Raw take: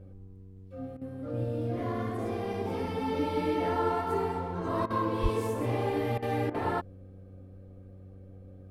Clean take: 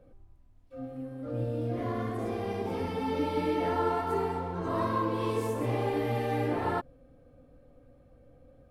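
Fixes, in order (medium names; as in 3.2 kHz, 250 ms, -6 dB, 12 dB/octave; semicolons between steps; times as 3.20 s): de-hum 94.8 Hz, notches 5; 5.22–5.34 s: high-pass 140 Hz 24 dB/octave; interpolate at 0.97/4.86/6.18/6.50 s, 42 ms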